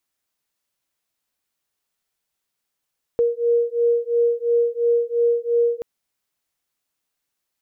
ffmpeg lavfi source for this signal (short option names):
-f lavfi -i "aevalsrc='0.106*(sin(2*PI*470*t)+sin(2*PI*472.9*t))':d=2.63:s=44100"